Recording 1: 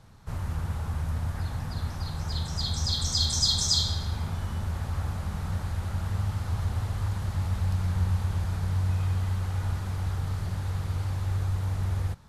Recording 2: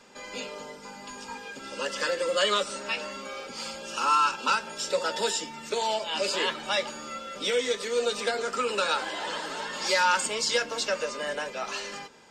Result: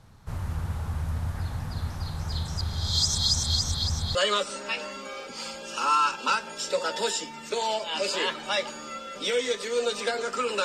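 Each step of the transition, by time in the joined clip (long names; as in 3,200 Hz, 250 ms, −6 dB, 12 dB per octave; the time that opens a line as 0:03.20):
recording 1
0:02.61–0:04.15: reverse
0:04.15: continue with recording 2 from 0:02.35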